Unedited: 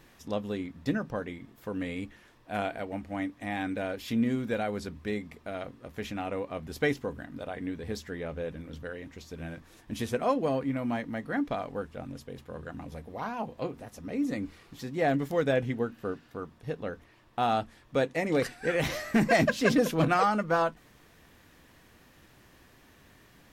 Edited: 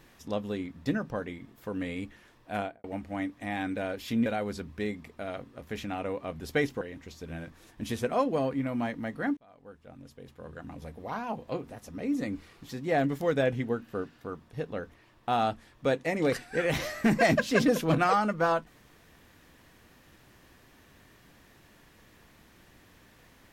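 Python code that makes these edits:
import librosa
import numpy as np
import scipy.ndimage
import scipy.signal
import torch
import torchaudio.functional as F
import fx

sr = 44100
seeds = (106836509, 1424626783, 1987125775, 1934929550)

y = fx.studio_fade_out(x, sr, start_s=2.55, length_s=0.29)
y = fx.edit(y, sr, fx.cut(start_s=4.26, length_s=0.27),
    fx.cut(start_s=7.08, length_s=1.83),
    fx.fade_in_span(start_s=11.47, length_s=1.64), tone=tone)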